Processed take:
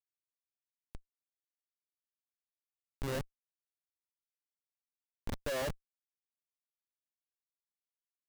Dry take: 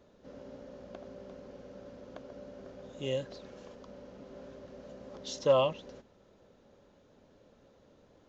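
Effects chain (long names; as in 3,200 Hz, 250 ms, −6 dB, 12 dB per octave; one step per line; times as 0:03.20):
comparator with hysteresis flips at −31.5 dBFS
level +4 dB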